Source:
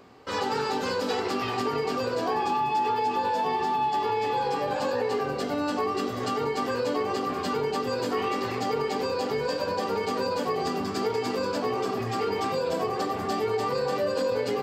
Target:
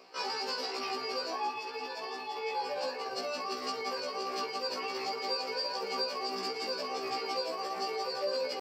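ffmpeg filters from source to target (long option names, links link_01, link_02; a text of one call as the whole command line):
ffmpeg -i in.wav -af "highpass=430,alimiter=level_in=0.5dB:limit=-24dB:level=0:latency=1:release=327,volume=-0.5dB,atempo=1.7,superequalizer=12b=1.78:14b=3.16,afftfilt=real='re*1.73*eq(mod(b,3),0)':imag='im*1.73*eq(mod(b,3),0)':win_size=2048:overlap=0.75" out.wav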